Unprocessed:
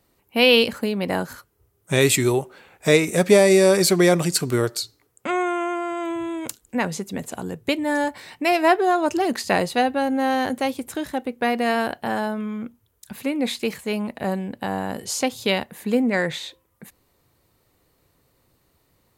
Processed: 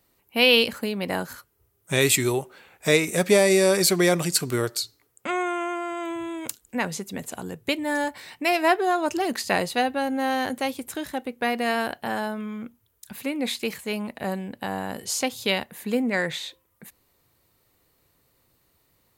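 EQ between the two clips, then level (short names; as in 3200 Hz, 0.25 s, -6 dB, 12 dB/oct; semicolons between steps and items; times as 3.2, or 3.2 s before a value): bell 2800 Hz +3.5 dB 2.8 oct; high shelf 11000 Hz +9.5 dB; -4.5 dB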